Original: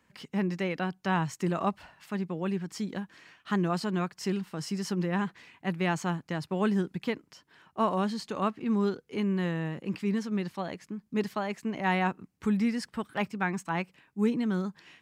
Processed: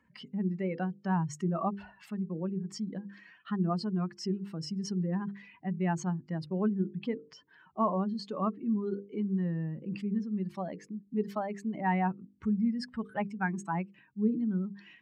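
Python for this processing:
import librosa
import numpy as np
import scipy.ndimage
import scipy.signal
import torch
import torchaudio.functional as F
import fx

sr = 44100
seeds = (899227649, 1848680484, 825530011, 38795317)

y = fx.spec_expand(x, sr, power=1.9)
y = fx.hum_notches(y, sr, base_hz=50, count=10)
y = y * 10.0 ** (-1.0 / 20.0)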